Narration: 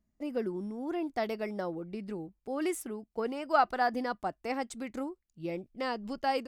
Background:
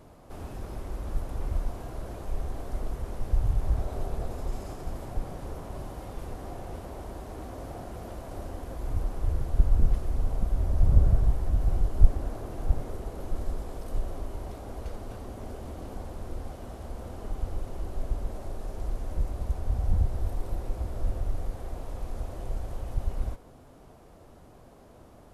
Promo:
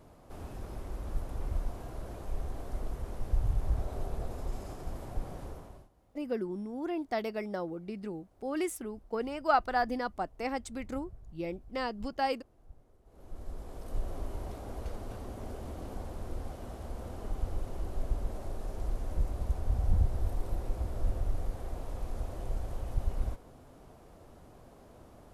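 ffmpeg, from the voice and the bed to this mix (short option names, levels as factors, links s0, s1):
-filter_complex "[0:a]adelay=5950,volume=0.944[s0];[1:a]volume=12.6,afade=t=out:st=5.41:d=0.48:silence=0.0630957,afade=t=in:st=13.04:d=1.22:silence=0.0501187[s1];[s0][s1]amix=inputs=2:normalize=0"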